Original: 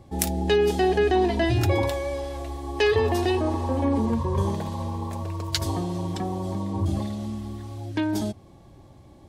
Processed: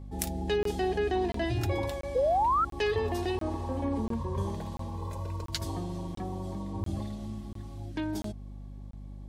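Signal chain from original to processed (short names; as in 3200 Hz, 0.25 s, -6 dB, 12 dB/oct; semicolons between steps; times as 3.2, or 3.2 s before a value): 2.15–2.65 painted sound rise 480–1400 Hz -17 dBFS; 4.97–5.44 comb 2 ms, depth 77%; hum 50 Hz, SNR 11 dB; crackling interface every 0.69 s, samples 1024, zero, from 0.63; gain -8 dB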